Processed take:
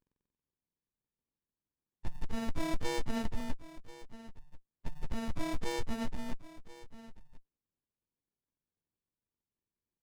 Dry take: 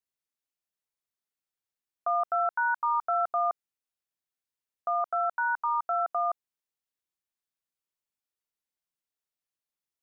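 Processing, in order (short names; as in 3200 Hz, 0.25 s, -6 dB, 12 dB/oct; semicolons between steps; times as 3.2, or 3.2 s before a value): inharmonic rescaling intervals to 125%; in parallel at -9 dB: hard clip -33 dBFS, distortion -6 dB; on the sum: echo 1.036 s -18 dB; dynamic EQ 890 Hz, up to -4 dB, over -37 dBFS, Q 1.6; running maximum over 65 samples; gain +7 dB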